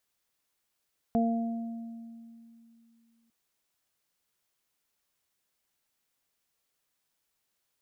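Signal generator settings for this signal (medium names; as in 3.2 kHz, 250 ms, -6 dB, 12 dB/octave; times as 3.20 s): additive tone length 2.15 s, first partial 230 Hz, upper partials -9.5/-4 dB, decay 2.83 s, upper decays 0.88/1.48 s, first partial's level -23 dB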